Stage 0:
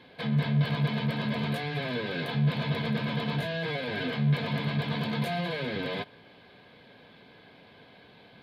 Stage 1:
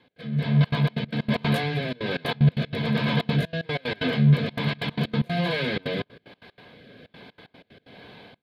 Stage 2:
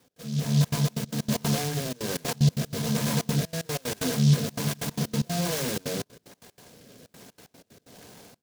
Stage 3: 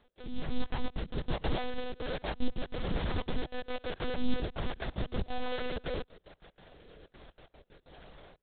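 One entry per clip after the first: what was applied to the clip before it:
automatic gain control gain up to 12 dB; rotating-speaker cabinet horn 1.2 Hz; gate pattern "x.xxxxxx.xx.x.x." 187 BPM −24 dB; level −3.5 dB
short delay modulated by noise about 4,500 Hz, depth 0.13 ms; level −2.5 dB
one-sided soft clipper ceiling −27.5 dBFS; one-pitch LPC vocoder at 8 kHz 250 Hz; graphic EQ with 15 bands 100 Hz −7 dB, 250 Hz −6 dB, 2,500 Hz −3 dB

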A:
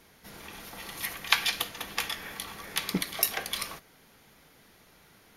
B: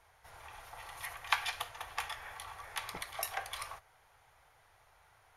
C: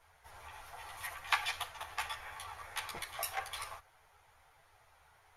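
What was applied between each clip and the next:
drawn EQ curve 110 Hz 0 dB, 210 Hz −27 dB, 790 Hz +4 dB, 4,700 Hz −10 dB, 9,500 Hz −5 dB, 14,000 Hz −15 dB; level −3.5 dB
string-ensemble chorus; level +3 dB

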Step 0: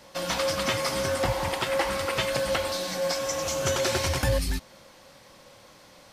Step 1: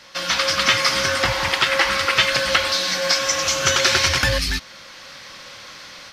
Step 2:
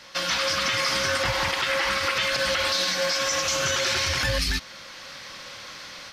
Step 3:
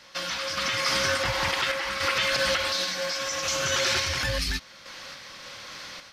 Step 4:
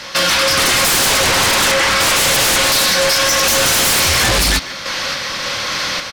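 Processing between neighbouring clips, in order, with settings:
flat-topped bell 2,700 Hz +11.5 dB 2.7 octaves; automatic gain control gain up to 7 dB; level −1.5 dB
brickwall limiter −14 dBFS, peak gain reduction 10.5 dB; level −1 dB
sample-and-hold tremolo
sine wavefolder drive 13 dB, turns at −14.5 dBFS; far-end echo of a speakerphone 150 ms, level −12 dB; level +4 dB

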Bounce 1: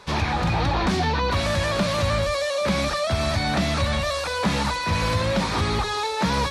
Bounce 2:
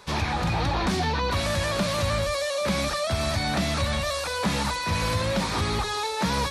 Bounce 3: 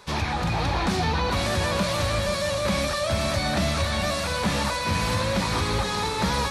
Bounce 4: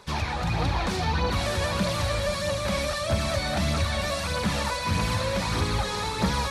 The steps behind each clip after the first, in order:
high-shelf EQ 8,900 Hz +10.5 dB; level −3 dB
feedback delay with all-pass diffusion 525 ms, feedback 43%, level −6 dB
phase shifter 1.6 Hz, delay 2.3 ms, feedback 38%; level −3 dB

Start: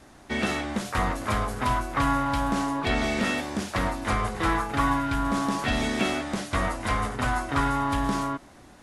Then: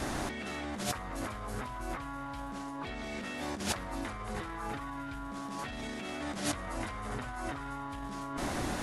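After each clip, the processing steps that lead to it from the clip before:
brickwall limiter −21.5 dBFS, peak gain reduction 9 dB
compressor whose output falls as the input rises −43 dBFS, ratio −1
level +4.5 dB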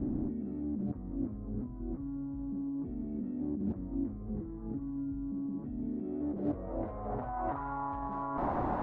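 low-pass filter sweep 270 Hz → 930 Hz, 0:05.83–0:07.57

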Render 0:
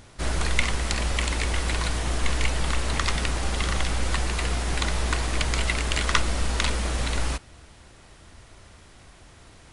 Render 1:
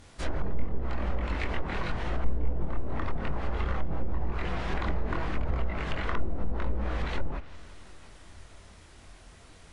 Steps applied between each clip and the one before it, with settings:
multi-voice chorus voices 4, 0.79 Hz, delay 23 ms, depth 3.2 ms
delay with a low-pass on its return 172 ms, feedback 80%, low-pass 2,600 Hz, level −23.5 dB
treble cut that deepens with the level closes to 490 Hz, closed at −19.5 dBFS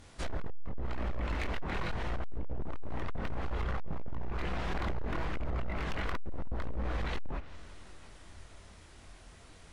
hard clipping −26 dBFS, distortion −9 dB
level −2 dB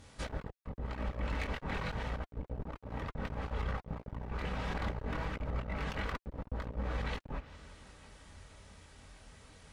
notch comb filter 350 Hz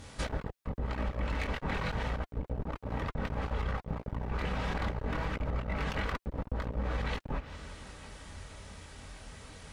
downward compressor 3 to 1, threshold −38 dBFS, peak gain reduction 6 dB
level +7.5 dB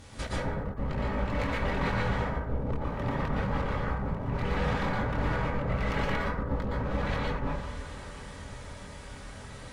dense smooth reverb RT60 0.9 s, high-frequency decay 0.35×, pre-delay 105 ms, DRR −5.5 dB
level −1.5 dB

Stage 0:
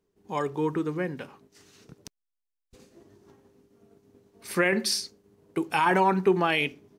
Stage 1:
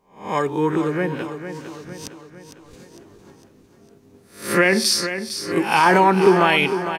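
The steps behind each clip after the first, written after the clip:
peak hold with a rise ahead of every peak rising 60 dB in 0.41 s
on a send: repeating echo 455 ms, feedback 51%, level −10 dB
on the sum: level +6.5 dB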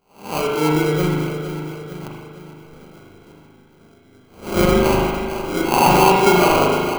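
sample-rate reduction 1,800 Hz, jitter 0%
spring reverb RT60 1.4 s, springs 39 ms, chirp 50 ms, DRR −1.5 dB
level −2 dB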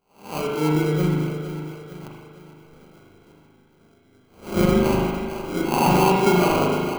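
dynamic equaliser 190 Hz, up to +7 dB, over −31 dBFS, Q 0.89
level −6.5 dB

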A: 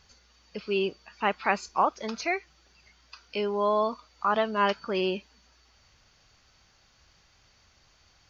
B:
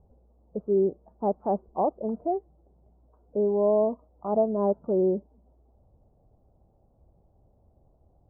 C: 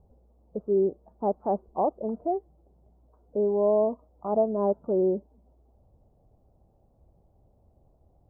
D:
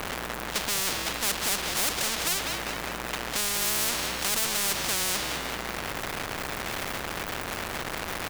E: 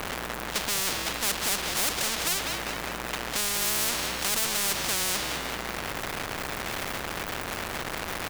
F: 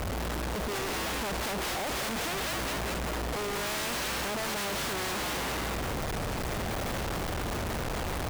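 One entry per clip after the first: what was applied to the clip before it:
Butterworth low-pass 730 Hz 36 dB per octave; level +5 dB
dynamic equaliser 160 Hz, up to −3 dB, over −40 dBFS, Q 1.5
power curve on the samples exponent 0.35; echo with shifted repeats 199 ms, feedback 48%, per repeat −54 Hz, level −11.5 dB; every bin compressed towards the loudest bin 10 to 1
no processing that can be heard
comparator with hysteresis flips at −41 dBFS; level −2 dB

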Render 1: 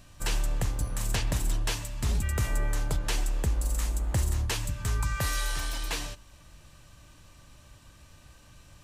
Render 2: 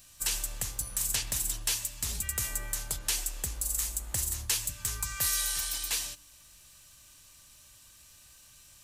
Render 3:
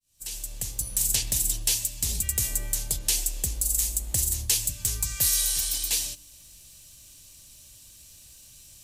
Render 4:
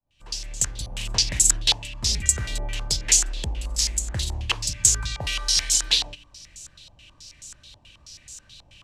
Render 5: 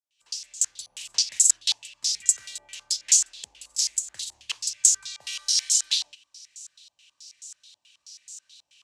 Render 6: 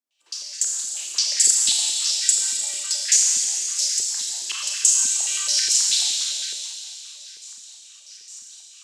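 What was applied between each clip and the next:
first-order pre-emphasis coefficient 0.9; hum removal 146.4 Hz, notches 3; level +7.5 dB
fade in at the beginning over 1.00 s; parametric band 1,300 Hz −14 dB 1.4 octaves; level +6.5 dB
low-pass on a step sequencer 9.3 Hz 830–7,000 Hz; level +4 dB
resonant band-pass 6,900 Hz, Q 0.96
four-comb reverb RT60 3.3 s, combs from 29 ms, DRR −3 dB; high-pass on a step sequencer 9.5 Hz 250–1,600 Hz

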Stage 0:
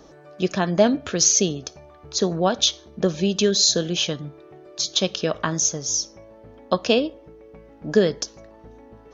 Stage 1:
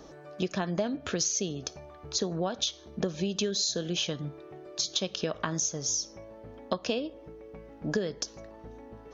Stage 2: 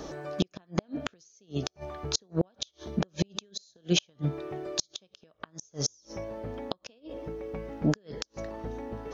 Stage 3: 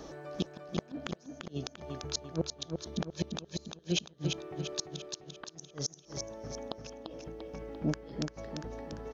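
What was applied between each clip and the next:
downward compressor 6 to 1, threshold −26 dBFS, peak gain reduction 14.5 dB; level −1 dB
gate with flip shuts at −21 dBFS, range −39 dB; level +9 dB
repeating echo 344 ms, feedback 48%, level −5 dB; level −6 dB

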